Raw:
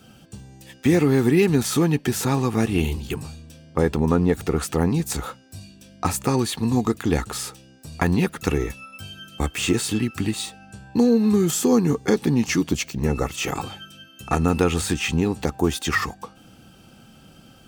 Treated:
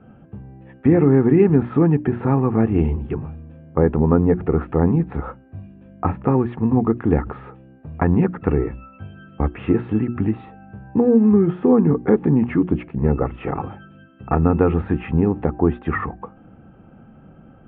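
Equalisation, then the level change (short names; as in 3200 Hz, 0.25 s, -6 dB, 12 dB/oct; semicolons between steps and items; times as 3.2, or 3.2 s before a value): Gaussian blur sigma 4.7 samples; air absorption 310 m; notches 60/120/180/240/300/360 Hz; +5.0 dB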